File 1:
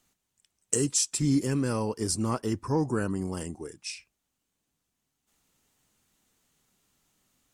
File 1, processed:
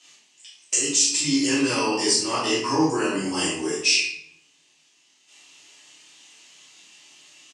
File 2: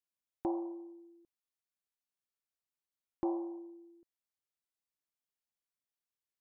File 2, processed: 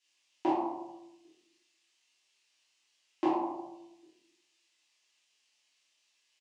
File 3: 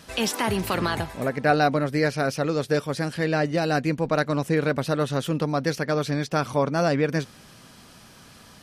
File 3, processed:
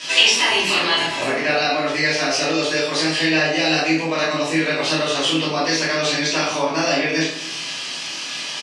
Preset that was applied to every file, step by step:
high-shelf EQ 2,000 Hz +10.5 dB
downward compressor 5 to 1, threshold −30 dBFS
loudspeaker in its box 410–7,100 Hz, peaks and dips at 550 Hz −6 dB, 1,400 Hz −9 dB, 2,700 Hz +6 dB
double-tracking delay 25 ms −4 dB
rectangular room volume 150 cubic metres, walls mixed, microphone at 2.9 metres
level +5 dB

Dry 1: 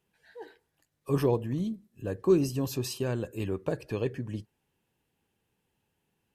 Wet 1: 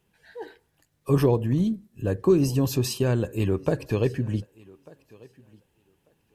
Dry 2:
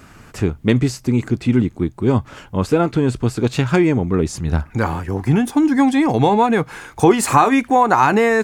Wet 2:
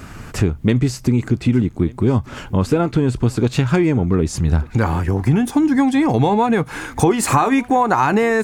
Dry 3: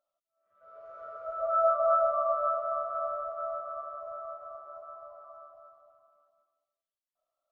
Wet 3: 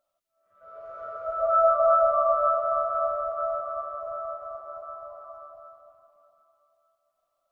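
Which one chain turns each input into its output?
low-shelf EQ 160 Hz +5.5 dB
downward compressor 2.5 to 1, threshold −22 dBFS
feedback echo with a high-pass in the loop 1,193 ms, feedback 16%, high-pass 190 Hz, level −23 dB
level +6 dB

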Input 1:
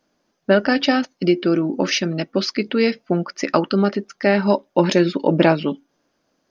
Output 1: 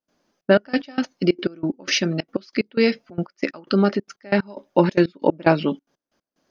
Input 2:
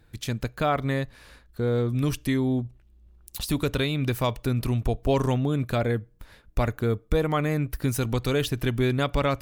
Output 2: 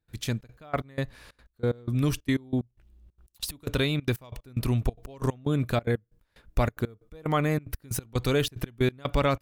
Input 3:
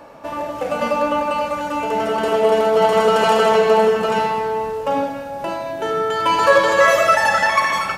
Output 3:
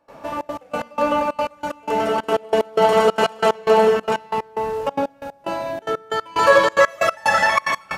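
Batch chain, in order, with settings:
gate pattern ".xxxx.x..x." 184 BPM −24 dB

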